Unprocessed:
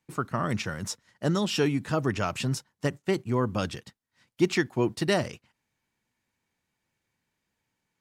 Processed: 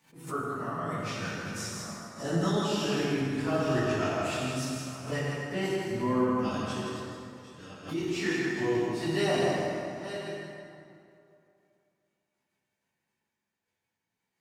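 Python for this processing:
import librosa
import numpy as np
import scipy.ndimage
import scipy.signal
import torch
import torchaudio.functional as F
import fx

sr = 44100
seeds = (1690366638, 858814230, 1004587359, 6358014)

y = fx.reverse_delay(x, sr, ms=358, wet_db=-12.0)
y = fx.highpass(y, sr, hz=170.0, slope=6)
y = fx.level_steps(y, sr, step_db=9)
y = fx.stretch_vocoder_free(y, sr, factor=1.8)
y = y + 10.0 ** (-5.5 / 20.0) * np.pad(y, (int(162 * sr / 1000.0), 0))[:len(y)]
y = fx.rev_plate(y, sr, seeds[0], rt60_s=2.6, hf_ratio=0.6, predelay_ms=0, drr_db=-4.5)
y = fx.pre_swell(y, sr, db_per_s=140.0)
y = y * 10.0 ** (-2.0 / 20.0)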